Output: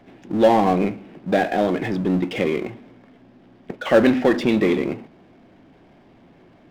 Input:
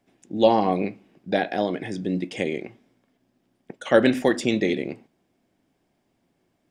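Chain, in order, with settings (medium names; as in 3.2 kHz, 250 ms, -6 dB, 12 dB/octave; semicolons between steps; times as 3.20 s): Gaussian low-pass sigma 2.3 samples; power-law waveshaper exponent 0.7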